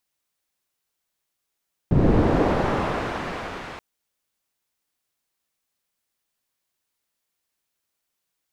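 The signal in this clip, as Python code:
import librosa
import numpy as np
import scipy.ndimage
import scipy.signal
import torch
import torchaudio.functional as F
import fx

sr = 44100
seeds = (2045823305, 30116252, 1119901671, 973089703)

y = fx.riser_noise(sr, seeds[0], length_s=1.88, colour='white', kind='lowpass', start_hz=170.0, end_hz=1700.0, q=0.7, swell_db=-31, law='linear')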